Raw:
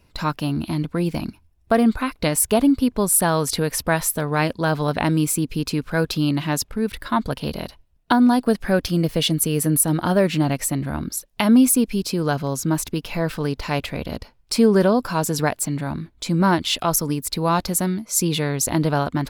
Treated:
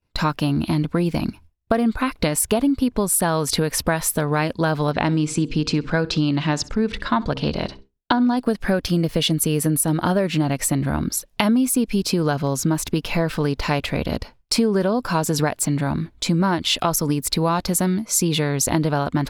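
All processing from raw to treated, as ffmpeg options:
-filter_complex "[0:a]asettb=1/sr,asplit=3[a][b][c];[a]atrim=end=4.914[d];[b]atrim=start=4.91:end=8.37,asetpts=PTS-STARTPTS,afade=t=in:d=0.004:c=qsin,afade=t=out:st=3.456:d=0.004:c=qsin,lowpass=f=7.2k:w=0.5412,lowpass=f=7.2k:w=1.3066,bandreject=f=66.58:t=h:w=4,bandreject=f=133.16:t=h:w=4,bandreject=f=199.74:t=h:w=4,bandreject=f=266.32:t=h:w=4,bandreject=f=332.9:t=h:w=4,bandreject=f=399.48:t=h:w=4,bandreject=f=466.06:t=h:w=4,aecho=1:1:65|130:0.0794|0.023,atrim=end_sample=152586[e];[c]atrim=start=8.366[f];[d][e]acrossfade=d=0.004:c1=hsin:c2=qsin[g];[g][f]acrossfade=d=0.004:c1=qsin:c2=hsin,agate=range=-33dB:threshold=-44dB:ratio=3:detection=peak,highshelf=f=11k:g=-7,acompressor=threshold=-22dB:ratio=6,volume=6dB"

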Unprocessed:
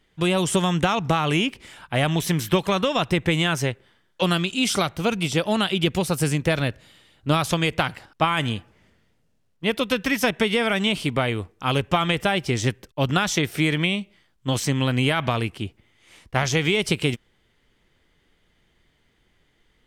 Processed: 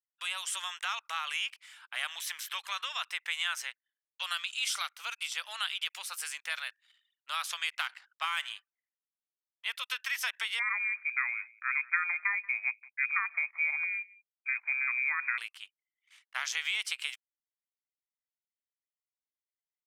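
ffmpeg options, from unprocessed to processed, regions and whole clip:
-filter_complex "[0:a]asettb=1/sr,asplit=3[a][b][c];[a]atrim=end=7.684[d];[b]atrim=start=7.68:end=8.47,asetpts=PTS-STARTPTS,afade=t=in:d=0.004:c=qsin,afade=t=out:st=0.786:d=0.004:c=qsin,adynamicsmooth=sensitivity=4:basefreq=6.5k,highshelf=f=9.1k:g=9.5[e];[c]atrim=start=8.466[f];[d][e]acrossfade=d=0.004:c1=hsin:c2=qsin[g];[g][f]acrossfade=d=0.004:c1=qsin:c2=hsin,asettb=1/sr,asplit=3[h][i][j];[h]atrim=end=10.594[k];[i]atrim=start=10.59:end=15.38,asetpts=PTS-STARTPTS,afade=t=in:d=0.004:c=qsin,afade=t=out:st=4.786:d=0.004:c=qsin,highpass=150,aecho=1:1:183:0.0708,atrim=end_sample=211239,lowpass=f=2.2k:t=q:w=0.5098,lowpass=f=2.2k:t=q:w=0.6013,lowpass=f=2.2k:t=q:w=0.9,lowpass=f=2.2k:t=q:w=2.563,afreqshift=-2600[l];[j]atrim=start=15.376[m];[k][l]acrossfade=d=0.004:c1=hsin:c2=qsin[n];[n][m]acrossfade=d=0.004:c1=qsin:c2=hsin,highpass=f=1.2k:w=0.5412,highpass=f=1.2k:w=1.3066,anlmdn=0.00251,volume=-7.5dB"

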